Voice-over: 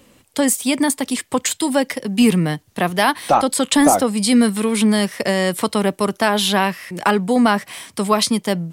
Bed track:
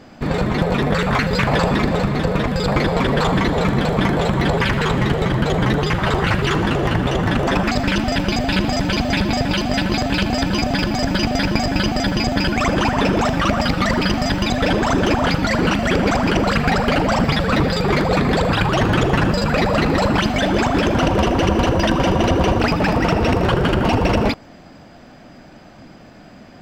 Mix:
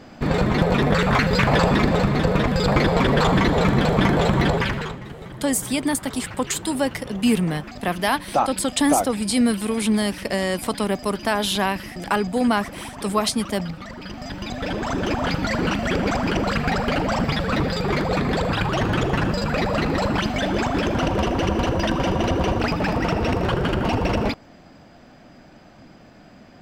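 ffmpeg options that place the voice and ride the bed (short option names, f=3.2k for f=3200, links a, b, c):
-filter_complex "[0:a]adelay=5050,volume=-5dB[a];[1:a]volume=13dB,afade=t=out:st=4.39:d=0.6:silence=0.125893,afade=t=in:st=13.99:d=1.4:silence=0.211349[b];[a][b]amix=inputs=2:normalize=0"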